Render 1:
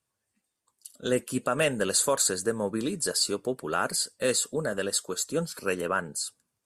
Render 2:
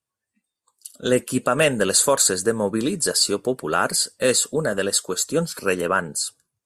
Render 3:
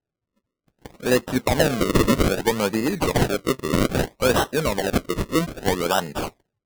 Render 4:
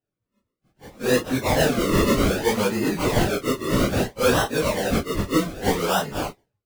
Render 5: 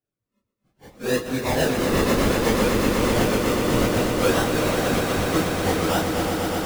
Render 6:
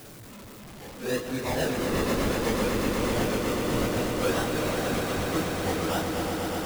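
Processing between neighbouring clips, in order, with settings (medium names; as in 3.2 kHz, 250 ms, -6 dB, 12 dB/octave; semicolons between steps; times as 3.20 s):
spectral noise reduction 12 dB; trim +7 dB
decimation with a swept rate 38×, swing 100% 0.62 Hz
phase randomisation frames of 100 ms
echo with a slow build-up 122 ms, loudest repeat 5, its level -7.5 dB; trim -3 dB
jump at every zero crossing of -31 dBFS; trim -7 dB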